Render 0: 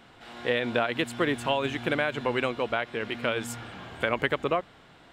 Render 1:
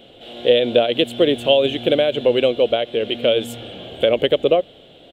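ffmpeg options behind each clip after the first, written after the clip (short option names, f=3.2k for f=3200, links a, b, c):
-af "firequalizer=gain_entry='entry(140,0);entry(550,12);entry(960,-11);entry(1900,-8);entry(3200,12);entry(4900,-7);entry(13000,2)':delay=0.05:min_phase=1,volume=4dB"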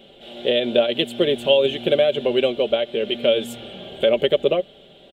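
-af "aecho=1:1:5.1:0.56,volume=-3dB"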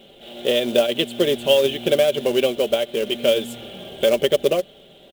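-af "acrusher=bits=4:mode=log:mix=0:aa=0.000001"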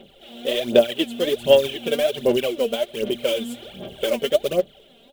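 -af "aphaser=in_gain=1:out_gain=1:delay=4.4:decay=0.68:speed=1.3:type=sinusoidal,volume=-5.5dB"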